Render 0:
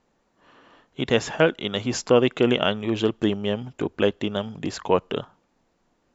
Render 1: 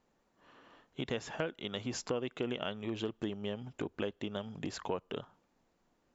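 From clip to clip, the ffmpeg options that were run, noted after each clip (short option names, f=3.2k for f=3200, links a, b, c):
-af "acompressor=threshold=-29dB:ratio=3,volume=-6.5dB"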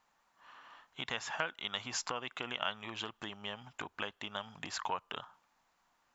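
-af "lowshelf=f=640:t=q:w=1.5:g=-13,volume=4dB"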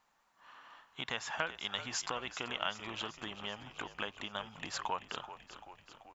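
-filter_complex "[0:a]asplit=8[a][b][c][d][e][f][g][h];[b]adelay=385,afreqshift=-53,volume=-13dB[i];[c]adelay=770,afreqshift=-106,volume=-17dB[j];[d]adelay=1155,afreqshift=-159,volume=-21dB[k];[e]adelay=1540,afreqshift=-212,volume=-25dB[l];[f]adelay=1925,afreqshift=-265,volume=-29.1dB[m];[g]adelay=2310,afreqshift=-318,volume=-33.1dB[n];[h]adelay=2695,afreqshift=-371,volume=-37.1dB[o];[a][i][j][k][l][m][n][o]amix=inputs=8:normalize=0"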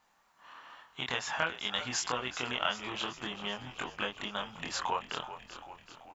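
-filter_complex "[0:a]asplit=2[a][b];[b]adelay=24,volume=-2.5dB[c];[a][c]amix=inputs=2:normalize=0,volume=2.5dB"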